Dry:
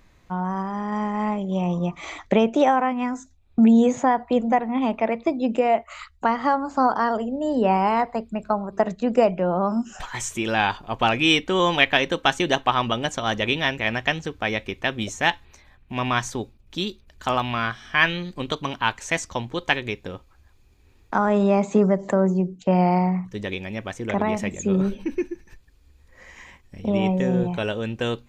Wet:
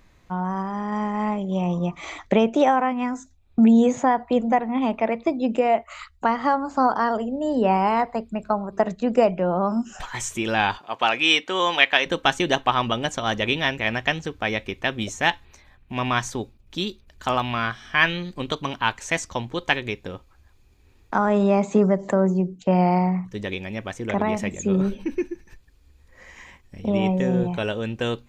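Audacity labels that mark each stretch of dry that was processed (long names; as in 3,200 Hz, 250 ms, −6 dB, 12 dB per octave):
10.780000	12.060000	meter weighting curve A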